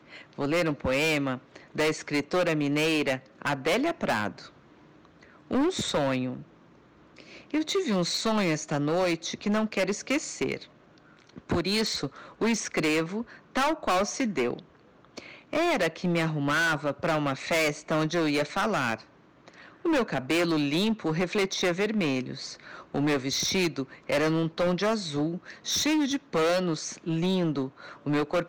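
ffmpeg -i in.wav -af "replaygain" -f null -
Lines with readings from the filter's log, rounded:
track_gain = +8.0 dB
track_peak = 0.057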